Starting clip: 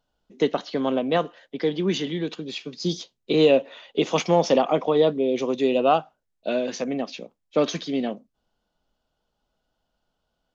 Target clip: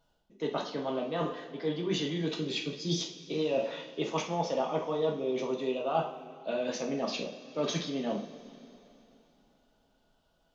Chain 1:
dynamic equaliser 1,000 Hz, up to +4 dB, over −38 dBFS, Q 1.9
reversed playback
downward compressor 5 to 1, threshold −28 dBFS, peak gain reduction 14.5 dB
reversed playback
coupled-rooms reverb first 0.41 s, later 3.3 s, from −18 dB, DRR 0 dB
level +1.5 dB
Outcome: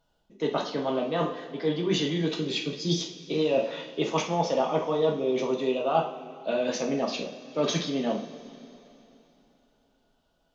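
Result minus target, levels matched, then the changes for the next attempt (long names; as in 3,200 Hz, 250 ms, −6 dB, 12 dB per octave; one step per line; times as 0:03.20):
downward compressor: peak gain reduction −5 dB
change: downward compressor 5 to 1, threshold −34.5 dBFS, peak gain reduction 19.5 dB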